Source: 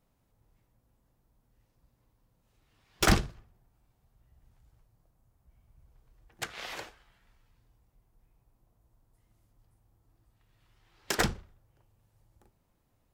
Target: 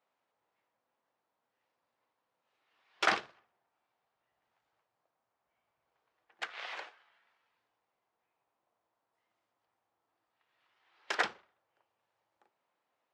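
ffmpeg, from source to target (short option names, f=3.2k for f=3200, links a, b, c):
-af "highpass=660,lowpass=3.3k"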